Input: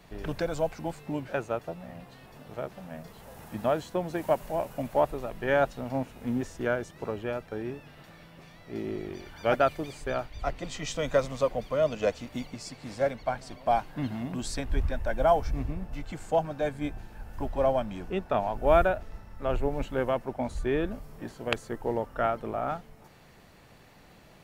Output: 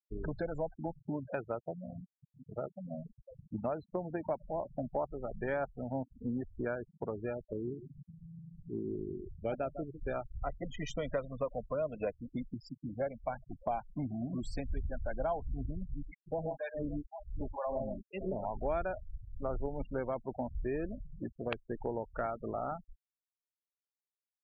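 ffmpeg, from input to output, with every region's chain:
ffmpeg -i in.wav -filter_complex "[0:a]asettb=1/sr,asplit=3[link_01][link_02][link_03];[link_01]atrim=end=7.344[link_04];[link_02]atrim=start=7.34:end=10.08,asetpts=PTS-STARTPTS,afade=type=in:duration=0.004:curve=qsin,afade=type=out:start_time=2.736:duration=0.004:curve=qsin,equalizer=frequency=1300:width=0.9:gain=-9.5,acompressor=mode=upward:threshold=-40dB:ratio=2.5:attack=3.2:release=140:knee=2.83:detection=peak,aecho=1:1:151:0.188,atrim=end_sample=120834[link_05];[link_03]atrim=start=10.076[link_06];[link_04][link_05]acrossfade=duration=0.004:curve1=hsin:curve2=qsin[link_07];[link_07][link_06]acrossfade=duration=0.004:curve1=qsin:curve2=hsin,asettb=1/sr,asplit=3[link_08][link_09][link_10];[link_08]atrim=end=15.954[link_11];[link_09]atrim=start=15.95:end=18.45,asetpts=PTS-STARTPTS,afade=type=in:duration=0.004:curve=qsin,afade=type=out:start_time=2.496:duration=0.004:curve=qsin,bandreject=frequency=740:width=12,aecho=1:1:49|110|131|158|565|789:0.119|0.316|0.631|0.224|0.119|0.178,atrim=end_sample=110250,acrossover=split=680[link_12][link_13];[link_12]aeval=exprs='val(0)*(1-1/2+1/2*cos(2*PI*2.1*n/s))':channel_layout=same[link_14];[link_13]aeval=exprs='val(0)*(1-1/2-1/2*cos(2*PI*2.1*n/s))':channel_layout=same[link_15];[link_14][link_15]amix=inputs=2:normalize=0[link_16];[link_10]atrim=start=18.446[link_17];[link_11][link_16]acrossfade=duration=0.004:curve1=hsin:curve2=qsin[link_18];[link_18][link_17]acrossfade=duration=0.004:curve1=qsin:curve2=hsin,afftfilt=real='re*gte(hypot(re,im),0.0282)':imag='im*gte(hypot(re,im),0.0282)':win_size=1024:overlap=0.75,highshelf=frequency=4400:gain=-11.5,acompressor=threshold=-36dB:ratio=3,volume=1dB" out.wav

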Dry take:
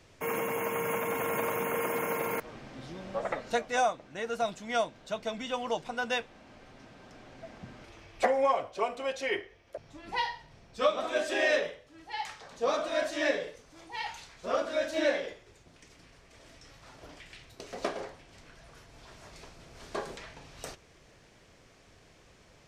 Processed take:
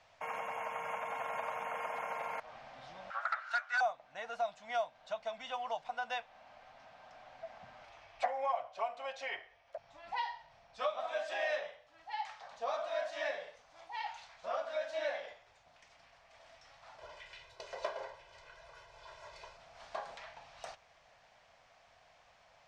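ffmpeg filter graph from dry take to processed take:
ffmpeg -i in.wav -filter_complex "[0:a]asettb=1/sr,asplit=3[link_01][link_02][link_03];[link_01]atrim=end=3.104[link_04];[link_02]atrim=start=3.1:end=3.81,asetpts=PTS-STARTPTS,afade=type=in:duration=0.004:curve=qsin,afade=type=out:start_time=0.706:duration=0.004:curve=qsin,highpass=frequency=1400:width_type=q:width=12,asoftclip=type=hard:threshold=-18dB[link_05];[link_03]atrim=start=3.806[link_06];[link_04][link_05]acrossfade=duration=0.004:curve1=hsin:curve2=qsin[link_07];[link_07][link_06]acrossfade=duration=0.004:curve1=qsin:curve2=hsin,asettb=1/sr,asplit=3[link_08][link_09][link_10];[link_08]atrim=end=16.984[link_11];[link_09]atrim=start=16.98:end=19.57,asetpts=PTS-STARTPTS,afade=type=in:duration=0.004:curve=qsin,afade=type=out:start_time=2.586:duration=0.004:curve=qsin,equalizer=frequency=370:width=3.1:gain=8.5,aecho=1:1:2:0.91,atrim=end_sample=114219[link_12];[link_10]atrim=start=19.566[link_13];[link_11][link_12]acrossfade=duration=0.004:curve1=hsin:curve2=qsin[link_14];[link_14][link_13]acrossfade=duration=0.004:curve1=qsin:curve2=hsin,lowpass=5100,lowshelf=frequency=510:width_type=q:width=3:gain=-11,acompressor=threshold=-37dB:ratio=1.5,volume=-4.5dB" out.wav

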